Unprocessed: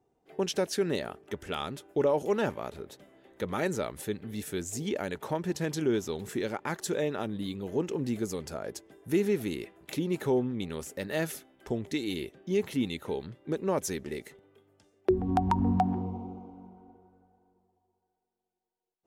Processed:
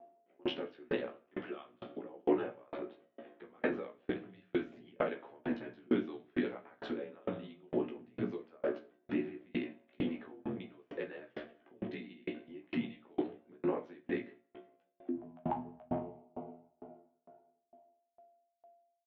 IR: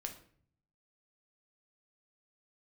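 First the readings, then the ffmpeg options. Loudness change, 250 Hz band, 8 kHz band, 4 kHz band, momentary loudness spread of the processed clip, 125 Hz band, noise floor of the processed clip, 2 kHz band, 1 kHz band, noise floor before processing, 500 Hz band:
-8.0 dB, -6.0 dB, under -40 dB, -11.0 dB, 12 LU, -14.0 dB, -79 dBFS, -6.5 dB, -10.5 dB, -82 dBFS, -8.0 dB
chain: -filter_complex "[0:a]equalizer=f=830:t=o:w=2.5:g=3.5,asplit=2[a][b];[b]acompressor=threshold=-34dB:ratio=6,volume=-2.5dB[c];[a][c]amix=inputs=2:normalize=0,alimiter=limit=-19.5dB:level=0:latency=1,aeval=exprs='val(0)*sin(2*PI*41*n/s)':c=same,aeval=exprs='val(0)+0.00141*sin(2*PI*760*n/s)':c=same,asplit=2[d][e];[e]adelay=16,volume=-2.5dB[f];[d][f]amix=inputs=2:normalize=0,aecho=1:1:180|360|540:0.112|0.037|0.0122[g];[1:a]atrim=start_sample=2205[h];[g][h]afir=irnorm=-1:irlink=0,highpass=f=290:t=q:w=0.5412,highpass=f=290:t=q:w=1.307,lowpass=f=3.3k:t=q:w=0.5176,lowpass=f=3.3k:t=q:w=0.7071,lowpass=f=3.3k:t=q:w=1.932,afreqshift=-72,aeval=exprs='val(0)*pow(10,-35*if(lt(mod(2.2*n/s,1),2*abs(2.2)/1000),1-mod(2.2*n/s,1)/(2*abs(2.2)/1000),(mod(2.2*n/s,1)-2*abs(2.2)/1000)/(1-2*abs(2.2)/1000))/20)':c=same,volume=4.5dB"

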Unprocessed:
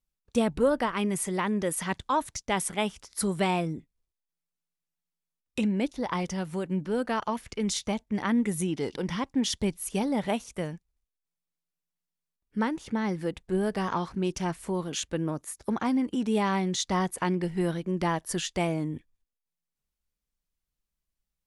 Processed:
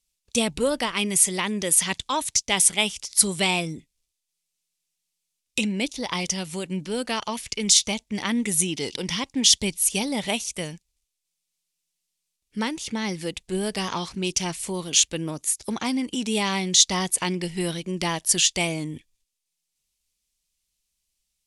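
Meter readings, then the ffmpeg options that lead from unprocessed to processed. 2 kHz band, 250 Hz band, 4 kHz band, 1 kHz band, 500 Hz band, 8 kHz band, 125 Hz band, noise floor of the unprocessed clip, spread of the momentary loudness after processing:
+6.5 dB, 0.0 dB, +13.5 dB, 0.0 dB, 0.0 dB, +15.5 dB, 0.0 dB, under -85 dBFS, 12 LU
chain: -af "aexciter=amount=5.7:drive=2.9:freq=2.2k,lowpass=10k"

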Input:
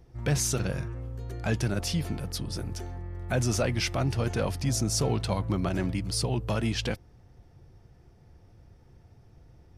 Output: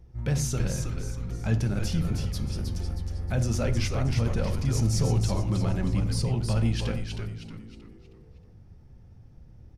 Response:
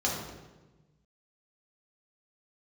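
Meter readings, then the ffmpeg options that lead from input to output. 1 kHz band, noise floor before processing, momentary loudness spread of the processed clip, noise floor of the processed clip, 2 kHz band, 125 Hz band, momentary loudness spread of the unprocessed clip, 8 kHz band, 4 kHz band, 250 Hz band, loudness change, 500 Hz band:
-3.0 dB, -56 dBFS, 9 LU, -52 dBFS, -3.5 dB, +4.0 dB, 11 LU, -4.0 dB, -3.5 dB, +1.0 dB, +1.5 dB, -2.0 dB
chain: -filter_complex "[0:a]lowshelf=f=200:g=10.5,asplit=6[a][b][c][d][e][f];[b]adelay=315,afreqshift=-110,volume=-5dB[g];[c]adelay=630,afreqshift=-220,volume=-13dB[h];[d]adelay=945,afreqshift=-330,volume=-20.9dB[i];[e]adelay=1260,afreqshift=-440,volume=-28.9dB[j];[f]adelay=1575,afreqshift=-550,volume=-36.8dB[k];[a][g][h][i][j][k]amix=inputs=6:normalize=0,asplit=2[l][m];[1:a]atrim=start_sample=2205,afade=t=out:st=0.17:d=0.01,atrim=end_sample=7938[n];[m][n]afir=irnorm=-1:irlink=0,volume=-15dB[o];[l][o]amix=inputs=2:normalize=0,volume=-7dB"

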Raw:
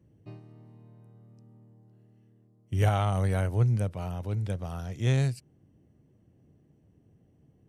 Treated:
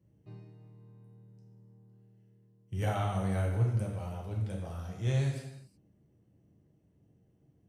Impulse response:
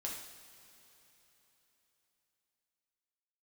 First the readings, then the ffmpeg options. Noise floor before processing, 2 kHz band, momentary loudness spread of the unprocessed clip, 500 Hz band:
-64 dBFS, -5.0 dB, 10 LU, -4.5 dB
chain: -filter_complex "[1:a]atrim=start_sample=2205,afade=t=out:st=0.43:d=0.01,atrim=end_sample=19404[a];[0:a][a]afir=irnorm=-1:irlink=0,volume=-4.5dB"

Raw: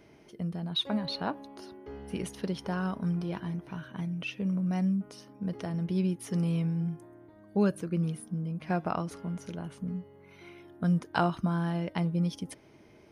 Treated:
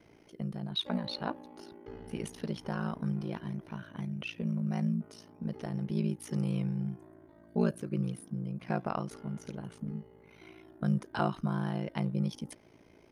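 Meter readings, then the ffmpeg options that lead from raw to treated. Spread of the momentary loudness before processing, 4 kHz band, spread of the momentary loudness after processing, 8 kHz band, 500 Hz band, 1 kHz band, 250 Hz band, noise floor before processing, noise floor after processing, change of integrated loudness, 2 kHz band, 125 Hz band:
14 LU, -3.5 dB, 14 LU, -3.0 dB, -3.0 dB, -3.5 dB, -3.0 dB, -57 dBFS, -59 dBFS, -3.0 dB, -3.5 dB, -2.5 dB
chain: -af "aeval=exprs='val(0)*sin(2*PI*28*n/s)':c=same"

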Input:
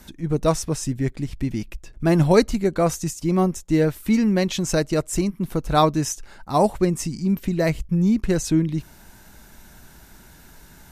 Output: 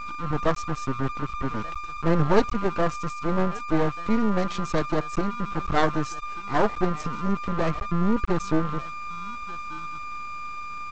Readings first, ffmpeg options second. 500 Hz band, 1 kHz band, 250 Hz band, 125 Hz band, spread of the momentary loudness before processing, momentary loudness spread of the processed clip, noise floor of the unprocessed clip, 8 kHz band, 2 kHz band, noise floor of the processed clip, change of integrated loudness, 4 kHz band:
-4.5 dB, 0.0 dB, -5.5 dB, -6.0 dB, 9 LU, 11 LU, -48 dBFS, -14.5 dB, +1.0 dB, -35 dBFS, -5.5 dB, -6.5 dB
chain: -af "aemphasis=mode=reproduction:type=75fm,aeval=exprs='val(0)+0.0398*sin(2*PI*1200*n/s)':c=same,aecho=1:1:1189:0.0708,aresample=16000,aeval=exprs='max(val(0),0)':c=same,aresample=44100"

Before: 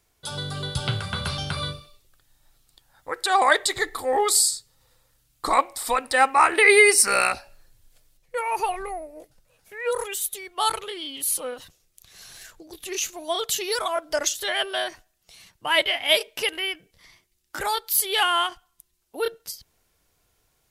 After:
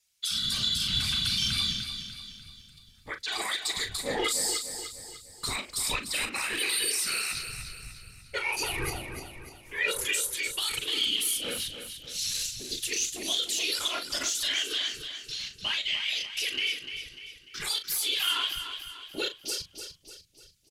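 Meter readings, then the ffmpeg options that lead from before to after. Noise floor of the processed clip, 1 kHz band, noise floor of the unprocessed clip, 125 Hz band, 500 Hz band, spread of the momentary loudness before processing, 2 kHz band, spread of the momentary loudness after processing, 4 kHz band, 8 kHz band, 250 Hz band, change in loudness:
-56 dBFS, -16.5 dB, -69 dBFS, n/a, -14.5 dB, 16 LU, -8.5 dB, 15 LU, +0.5 dB, -4.5 dB, -5.0 dB, -6.0 dB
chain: -filter_complex "[0:a]firequalizer=gain_entry='entry(870,0);entry(2600,12);entry(5100,10);entry(14000,-5)':delay=0.05:min_phase=1,afftfilt=real='re*lt(hypot(re,im),1.41)':imag='im*lt(hypot(re,im),1.41)':win_size=1024:overlap=0.75,crystalizer=i=7.5:c=0,agate=range=-33dB:threshold=-60dB:ratio=3:detection=peak,alimiter=limit=-11.5dB:level=0:latency=1:release=140,asubboost=boost=8:cutoff=240,afwtdn=0.0224,afftfilt=real='hypot(re,im)*cos(2*PI*random(0))':imag='hypot(re,im)*sin(2*PI*random(1))':win_size=512:overlap=0.75,asplit=2[a][b];[b]adelay=39,volume=-10dB[c];[a][c]amix=inputs=2:normalize=0,aecho=1:1:297|594|891|1188|1485:0.355|0.163|0.0751|0.0345|0.0159,volume=-2.5dB"

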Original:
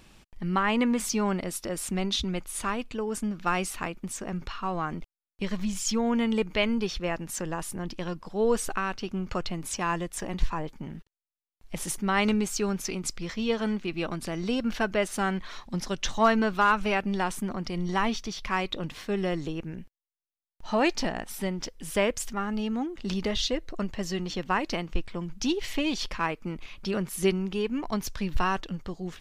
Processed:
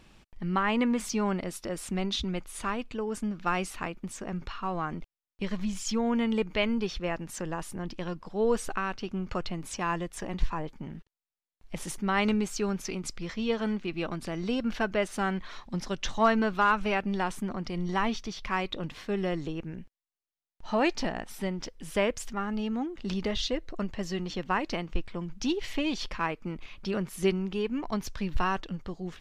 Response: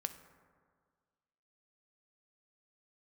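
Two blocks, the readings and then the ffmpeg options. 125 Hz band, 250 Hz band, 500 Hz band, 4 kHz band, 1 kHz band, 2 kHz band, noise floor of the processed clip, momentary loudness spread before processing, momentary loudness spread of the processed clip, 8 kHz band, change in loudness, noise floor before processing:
-1.5 dB, -1.5 dB, -1.5 dB, -3.0 dB, -1.5 dB, -2.0 dB, under -85 dBFS, 10 LU, 10 LU, -6.0 dB, -2.0 dB, under -85 dBFS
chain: -af "highshelf=f=7.3k:g=-9,volume=-1.5dB"

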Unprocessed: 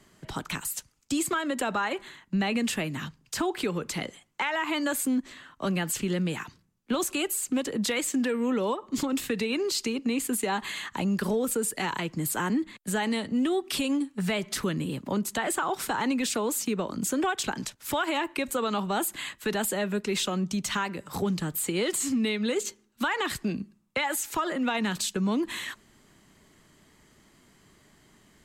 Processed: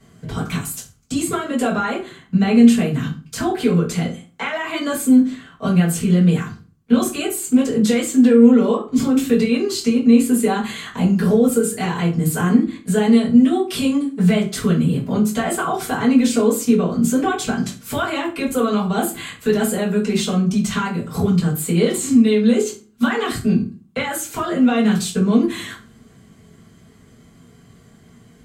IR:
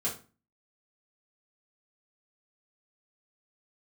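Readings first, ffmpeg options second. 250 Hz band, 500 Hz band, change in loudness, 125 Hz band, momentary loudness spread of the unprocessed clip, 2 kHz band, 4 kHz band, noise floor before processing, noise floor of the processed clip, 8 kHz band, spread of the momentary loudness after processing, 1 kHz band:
+14.0 dB, +10.5 dB, +11.0 dB, +14.5 dB, 6 LU, +4.0 dB, +4.0 dB, -63 dBFS, -49 dBFS, +4.5 dB, 11 LU, +5.5 dB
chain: -filter_complex "[0:a]lowshelf=f=260:g=10.5[a];[1:a]atrim=start_sample=2205[b];[a][b]afir=irnorm=-1:irlink=0"

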